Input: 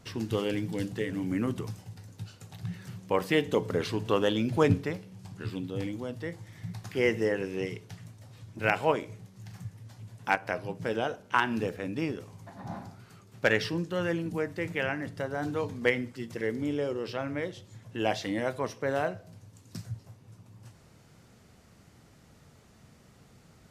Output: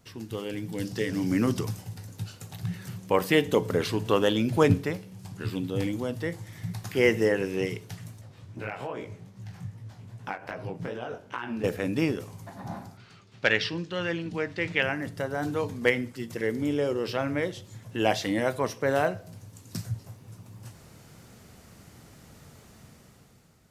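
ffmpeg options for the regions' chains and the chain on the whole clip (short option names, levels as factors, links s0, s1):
-filter_complex "[0:a]asettb=1/sr,asplit=3[s0][s1][s2];[s0]atrim=end=0.854[s3];[s1]atrim=start=0.85:end=1.65,asetpts=PTS-STARTPTS,afade=t=in:d=0.004:c=qsin,afade=t=out:st=0.796:d=0.004:c=qsin,highpass=47,equalizer=f=5200:w=2.6:g=12.5[s4];[s2]atrim=start=1.646[s5];[s3][s4]acrossfade=d=0.004:c1=hsin:c2=qsin[s6];[s6][s5]acrossfade=d=0.004:c1=qsin:c2=hsin,asettb=1/sr,asplit=3[s7][s8][s9];[s7]atrim=end=8.214[s10];[s8]atrim=start=8.21:end=11.64,asetpts=PTS-STARTPTS,afade=t=in:d=0.004:c=qsin,afade=t=out:st=3.426:d=0.004:c=qsin,aemphasis=mode=reproduction:type=50kf,acompressor=threshold=0.0251:ratio=12:attack=3.2:release=140:knee=1:detection=peak,flanger=delay=16:depth=7.8:speed=2.5[s11];[s9]atrim=start=11.636[s12];[s10][s11]acrossfade=d=0.004:c1=hsin:c2=qsin[s13];[s13][s12]acrossfade=d=0.004:c1=qsin:c2=hsin,asettb=1/sr,asplit=3[s14][s15][s16];[s14]atrim=end=12.974[s17];[s15]atrim=start=12.97:end=14.83,asetpts=PTS-STARTPTS,afade=t=in:d=0.004:c=qsin,afade=t=out:st=1.856:d=0.004:c=qsin,lowpass=5000,equalizer=f=3500:t=o:w=2.1:g=8.5[s18];[s16]atrim=start=14.826[s19];[s17][s18]acrossfade=d=0.004:c1=hsin:c2=qsin[s20];[s20][s19]acrossfade=d=0.004:c1=qsin:c2=hsin,highshelf=f=11000:g=10.5,dynaudnorm=f=250:g=7:m=3.98,volume=0.501"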